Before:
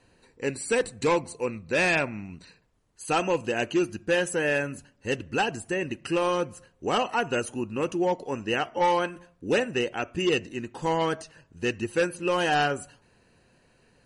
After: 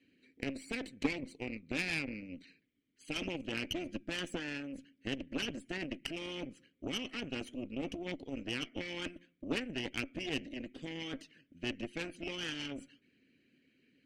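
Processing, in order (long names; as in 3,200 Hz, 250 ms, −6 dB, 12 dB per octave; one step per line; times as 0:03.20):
formant filter i
in parallel at −1.5 dB: compressor whose output falls as the input rises −45 dBFS, ratio −0.5
on the sum: harmonic and percussive parts rebalanced harmonic −7 dB
harmonic generator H 3 −15 dB, 6 −21 dB, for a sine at −26 dBFS
level +7.5 dB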